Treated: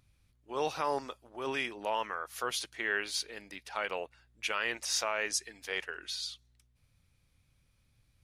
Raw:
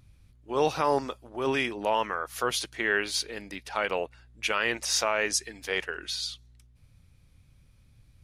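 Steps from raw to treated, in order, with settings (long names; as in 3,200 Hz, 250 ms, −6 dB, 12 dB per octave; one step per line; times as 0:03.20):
low-shelf EQ 400 Hz −7.5 dB
level −5 dB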